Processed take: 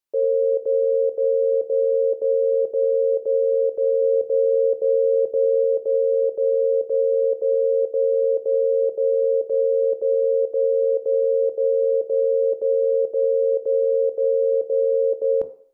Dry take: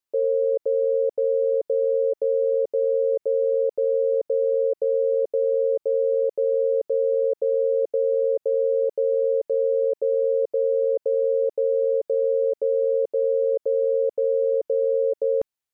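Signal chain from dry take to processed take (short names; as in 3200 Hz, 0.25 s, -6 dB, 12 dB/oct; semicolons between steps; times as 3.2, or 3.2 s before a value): 4.02–5.64 low shelf 170 Hz +9 dB; on a send: reverb RT60 0.55 s, pre-delay 18 ms, DRR 12.5 dB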